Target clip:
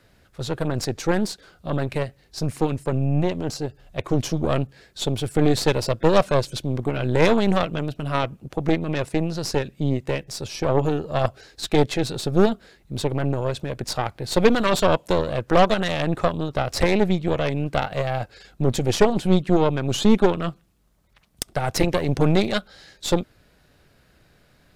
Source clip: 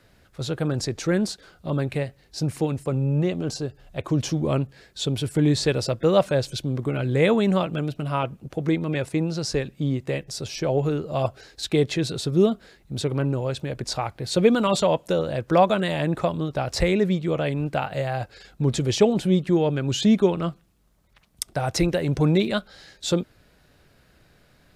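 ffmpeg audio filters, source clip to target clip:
-af "aeval=exprs='0.562*(cos(1*acos(clip(val(0)/0.562,-1,1)))-cos(1*PI/2))+0.112*(cos(6*acos(clip(val(0)/0.562,-1,1)))-cos(6*PI/2))':c=same"

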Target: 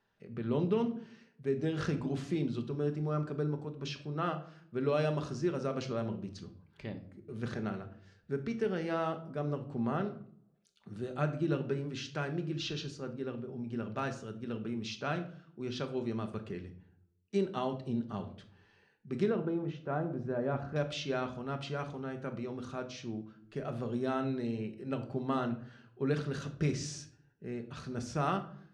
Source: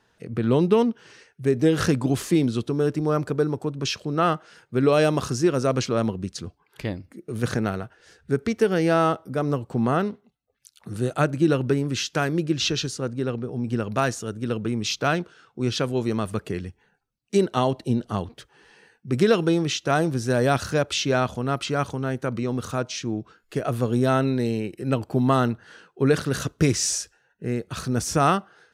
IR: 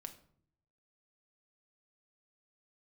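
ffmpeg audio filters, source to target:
-filter_complex "[0:a]asetnsamples=n=441:p=0,asendcmd='19.26 lowpass f 1300;20.76 lowpass f 4800',lowpass=4700[s0];[1:a]atrim=start_sample=2205[s1];[s0][s1]afir=irnorm=-1:irlink=0,volume=0.422"

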